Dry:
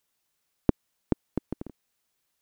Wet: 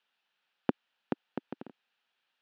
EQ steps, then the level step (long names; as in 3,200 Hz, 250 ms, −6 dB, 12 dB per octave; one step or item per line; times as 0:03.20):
loudspeaker in its box 270–2,900 Hz, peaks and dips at 310 Hz −9 dB, 430 Hz −7 dB, 620 Hz −7 dB, 1,100 Hz −8 dB, 2,100 Hz −9 dB
spectral tilt +2.5 dB per octave
+6.5 dB